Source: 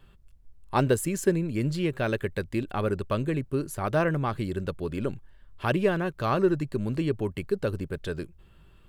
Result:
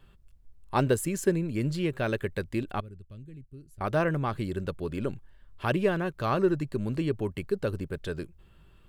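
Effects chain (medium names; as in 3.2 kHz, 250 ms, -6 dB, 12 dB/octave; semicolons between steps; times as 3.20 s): 2.80–3.81 s: amplifier tone stack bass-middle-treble 10-0-1; trim -1.5 dB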